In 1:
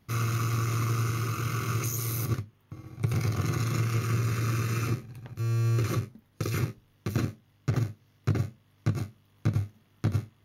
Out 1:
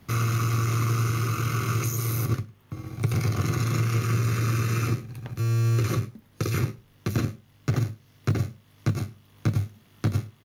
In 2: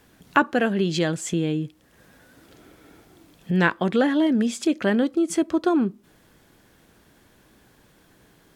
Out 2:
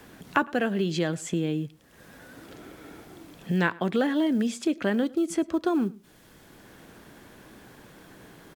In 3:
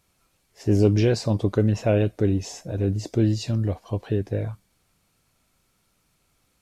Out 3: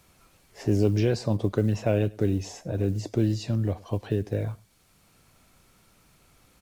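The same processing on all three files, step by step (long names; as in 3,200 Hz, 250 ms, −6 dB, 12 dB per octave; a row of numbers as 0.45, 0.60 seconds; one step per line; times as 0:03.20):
log-companded quantiser 8 bits
slap from a distant wall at 18 metres, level −24 dB
multiband upward and downward compressor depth 40%
loudness normalisation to −27 LKFS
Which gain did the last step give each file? +3.0, −4.0, −3.5 decibels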